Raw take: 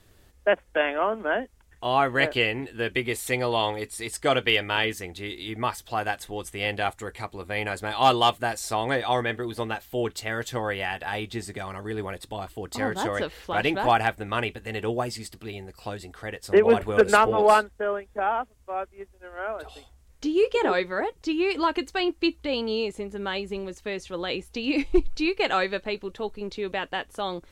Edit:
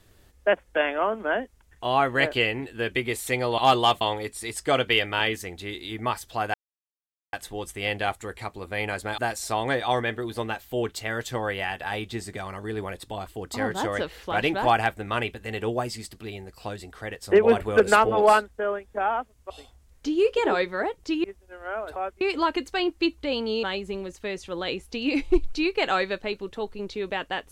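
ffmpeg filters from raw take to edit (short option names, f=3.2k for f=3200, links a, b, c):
-filter_complex "[0:a]asplit=10[a][b][c][d][e][f][g][h][i][j];[a]atrim=end=3.582[k];[b]atrim=start=7.958:end=8.392[l];[c]atrim=start=3.578:end=6.11,asetpts=PTS-STARTPTS,afade=t=out:st=2.528:d=0.004:c=hsin,apad=pad_dur=0.79[m];[d]atrim=start=6.11:end=7.962,asetpts=PTS-STARTPTS,afade=t=in:d=0.004:c=hsin[n];[e]atrim=start=8.388:end=18.712[o];[f]atrim=start=19.678:end=21.422[p];[g]atrim=start=18.958:end=19.682[q];[h]atrim=start=18.708:end=18.962[r];[i]atrim=start=21.418:end=22.842[s];[j]atrim=start=23.248[t];[k][l]acrossfade=d=0.004:c1=hsin:c2=hsin[u];[m][n]concat=n=2:v=0:a=1[v];[u][v]acrossfade=d=0.004:c1=hsin:c2=hsin[w];[w][o]acrossfade=d=0.004:c1=hsin:c2=hsin[x];[x][p]acrossfade=d=0.004:c1=hsin:c2=hsin[y];[y][q]acrossfade=d=0.004:c1=hsin:c2=hsin[z];[z][r]acrossfade=d=0.004:c1=hsin:c2=hsin[aa];[aa][s]acrossfade=d=0.004:c1=hsin:c2=hsin[ab];[ab][t]acrossfade=d=0.004:c1=hsin:c2=hsin"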